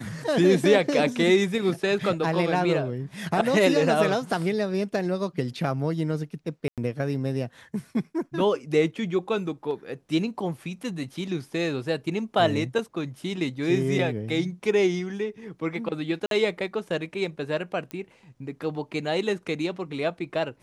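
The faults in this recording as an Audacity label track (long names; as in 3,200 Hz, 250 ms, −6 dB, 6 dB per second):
6.680000	6.780000	drop-out 97 ms
16.260000	16.310000	drop-out 52 ms
17.910000	17.910000	click −21 dBFS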